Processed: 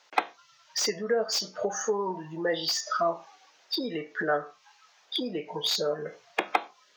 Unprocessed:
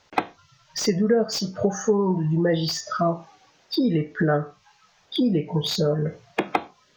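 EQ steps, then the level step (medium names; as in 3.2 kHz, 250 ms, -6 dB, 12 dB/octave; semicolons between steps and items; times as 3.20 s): Bessel high-pass 670 Hz, order 2; 0.0 dB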